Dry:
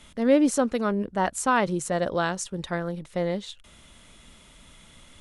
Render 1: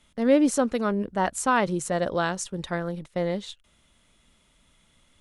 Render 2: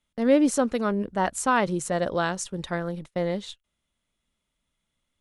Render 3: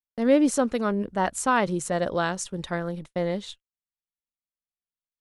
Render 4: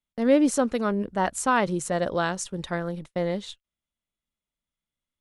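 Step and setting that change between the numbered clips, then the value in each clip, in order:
gate, range: -11, -28, -57, -40 dB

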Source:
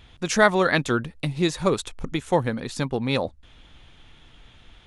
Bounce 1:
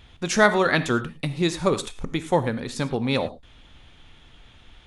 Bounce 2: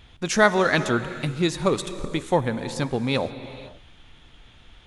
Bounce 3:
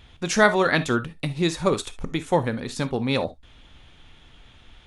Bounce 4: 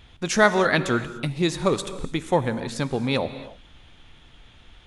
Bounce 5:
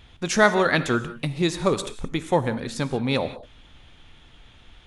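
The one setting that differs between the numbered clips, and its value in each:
non-linear reverb, gate: 130, 540, 90, 320, 210 ms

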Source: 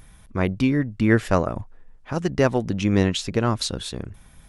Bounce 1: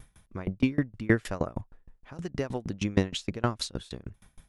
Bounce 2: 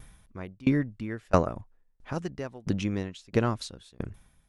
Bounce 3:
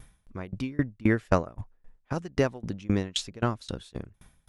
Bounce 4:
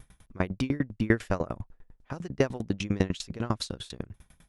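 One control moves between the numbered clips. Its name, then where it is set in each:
dB-ramp tremolo, rate: 6.4, 1.5, 3.8, 10 Hz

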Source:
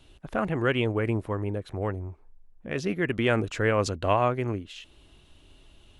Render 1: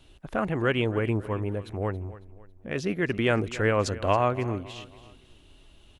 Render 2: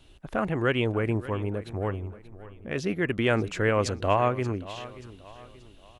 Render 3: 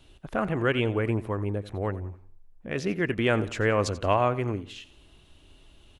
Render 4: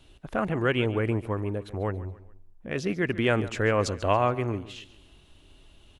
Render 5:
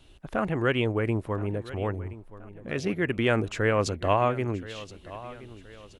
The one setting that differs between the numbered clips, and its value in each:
feedback echo, time: 276, 581, 88, 141, 1024 ms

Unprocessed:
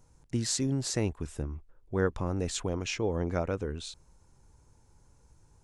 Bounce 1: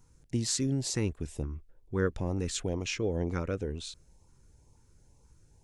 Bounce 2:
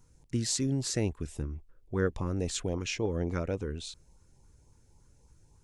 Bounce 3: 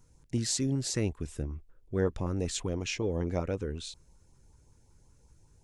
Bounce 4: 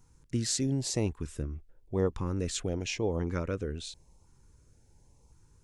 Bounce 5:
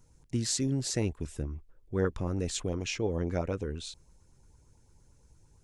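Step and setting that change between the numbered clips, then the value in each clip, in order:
LFO notch, rate: 2.1, 3.6, 5.3, 0.94, 8.8 Hz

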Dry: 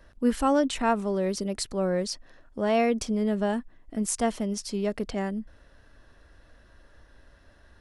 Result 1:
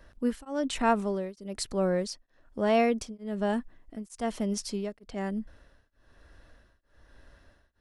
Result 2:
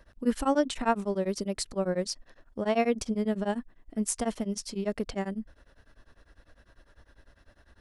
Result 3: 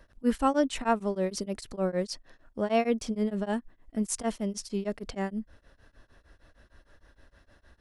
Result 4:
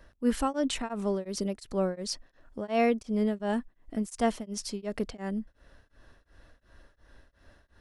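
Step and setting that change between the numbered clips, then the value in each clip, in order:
beating tremolo, nulls at: 1.1, 10, 6.5, 2.8 Hz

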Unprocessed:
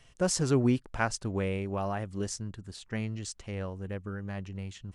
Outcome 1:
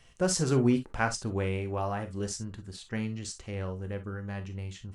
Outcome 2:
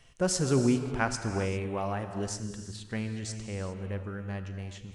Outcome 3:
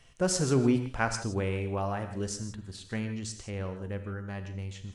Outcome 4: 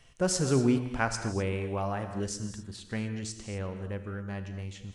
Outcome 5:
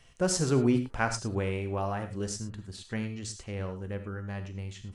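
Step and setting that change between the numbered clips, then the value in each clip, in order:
non-linear reverb, gate: 80, 430, 190, 280, 130 ms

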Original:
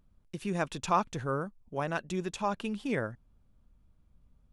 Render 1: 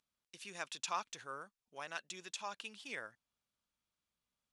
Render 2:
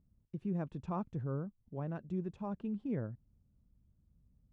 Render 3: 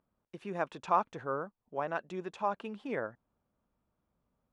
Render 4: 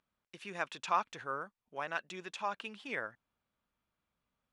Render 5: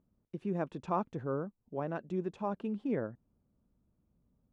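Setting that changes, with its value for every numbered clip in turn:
band-pass, frequency: 5200, 120, 800, 2100, 310 Hz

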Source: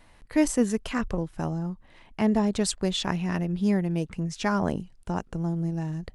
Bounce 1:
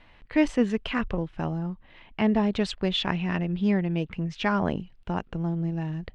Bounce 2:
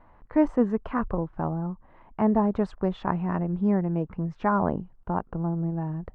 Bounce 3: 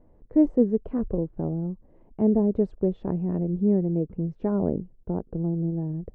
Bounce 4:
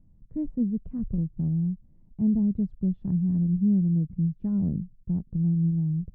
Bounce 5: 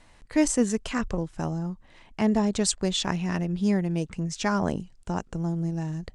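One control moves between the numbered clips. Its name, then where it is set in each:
synth low-pass, frequency: 3000, 1100, 450, 170, 7700 Hz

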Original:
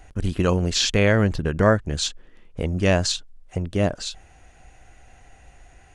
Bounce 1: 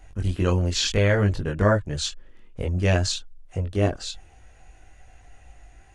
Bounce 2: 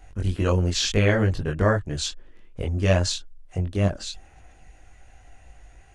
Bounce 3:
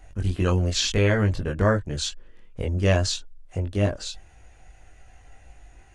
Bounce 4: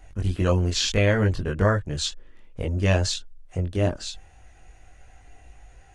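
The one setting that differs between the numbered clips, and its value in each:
chorus, rate: 0.54, 1.9, 0.23, 0.34 Hz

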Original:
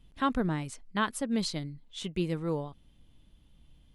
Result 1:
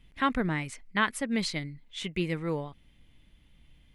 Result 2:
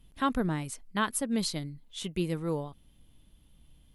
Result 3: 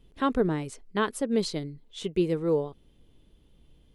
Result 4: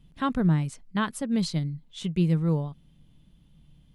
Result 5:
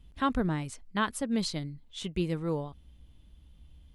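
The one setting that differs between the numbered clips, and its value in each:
bell, frequency: 2100, 12000, 420, 160, 63 Hz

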